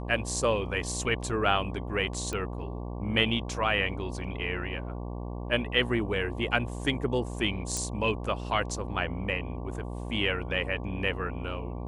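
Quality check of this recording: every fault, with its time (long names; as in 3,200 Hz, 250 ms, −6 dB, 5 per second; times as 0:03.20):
mains buzz 60 Hz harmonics 19 −36 dBFS
0:02.33: click −20 dBFS
0:07.77: click −17 dBFS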